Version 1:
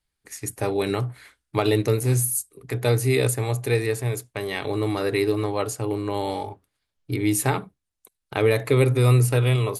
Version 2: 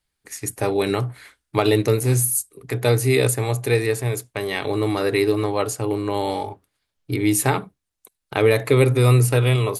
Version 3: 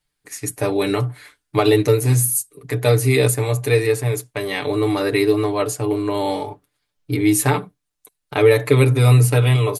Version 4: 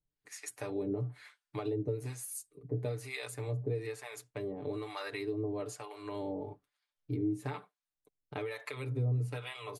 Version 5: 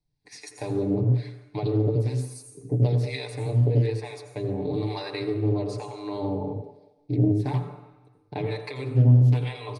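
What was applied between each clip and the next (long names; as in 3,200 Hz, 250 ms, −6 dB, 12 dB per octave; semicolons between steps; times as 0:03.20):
low-shelf EQ 120 Hz −3.5 dB; level +3.5 dB
comb filter 6.8 ms
downward compressor 6 to 1, threshold −20 dBFS, peak gain reduction 11.5 dB; two-band tremolo in antiphase 1.1 Hz, depth 100%, crossover 630 Hz; high-frequency loss of the air 53 metres; level −8.5 dB
convolution reverb RT60 1.0 s, pre-delay 80 ms, DRR 6 dB; downsampling to 22,050 Hz; highs frequency-modulated by the lows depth 0.58 ms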